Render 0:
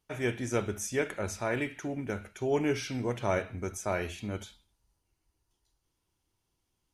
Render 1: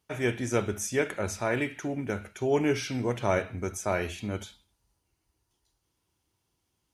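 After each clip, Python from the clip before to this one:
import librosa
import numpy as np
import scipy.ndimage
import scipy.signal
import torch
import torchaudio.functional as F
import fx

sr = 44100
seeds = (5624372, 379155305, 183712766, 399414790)

y = scipy.signal.sosfilt(scipy.signal.butter(2, 53.0, 'highpass', fs=sr, output='sos'), x)
y = F.gain(torch.from_numpy(y), 3.0).numpy()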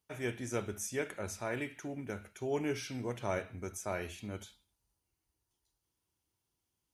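y = fx.high_shelf(x, sr, hz=9200.0, db=8.0)
y = F.gain(torch.from_numpy(y), -9.0).numpy()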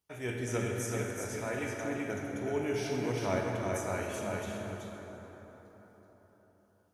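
y = fx.tremolo_random(x, sr, seeds[0], hz=3.5, depth_pct=55)
y = y + 10.0 ** (-4.0 / 20.0) * np.pad(y, (int(379 * sr / 1000.0), 0))[:len(y)]
y = fx.rev_plate(y, sr, seeds[1], rt60_s=4.6, hf_ratio=0.45, predelay_ms=0, drr_db=0.0)
y = F.gain(torch.from_numpy(y), 1.5).numpy()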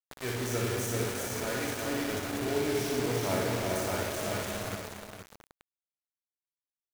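y = fx.peak_eq(x, sr, hz=2900.0, db=-4.5, octaves=0.44)
y = fx.quant_dither(y, sr, seeds[2], bits=6, dither='none')
y = fx.echo_multitap(y, sr, ms=(59, 476), db=(-5.0, -8.5))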